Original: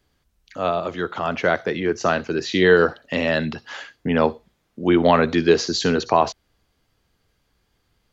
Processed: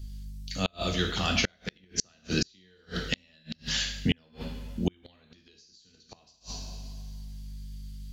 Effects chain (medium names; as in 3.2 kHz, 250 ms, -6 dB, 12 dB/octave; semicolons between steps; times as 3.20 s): FFT filter 220 Hz 0 dB, 330 Hz -9 dB, 1.1 kHz -12 dB, 4.5 kHz +13 dB; hum 50 Hz, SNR 23 dB; bass shelf 120 Hz +9.5 dB; two-slope reverb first 0.63 s, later 2 s, from -19 dB, DRR 1.5 dB; compression 8:1, threshold -17 dBFS, peak gain reduction 10.5 dB; inverted gate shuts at -13 dBFS, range -38 dB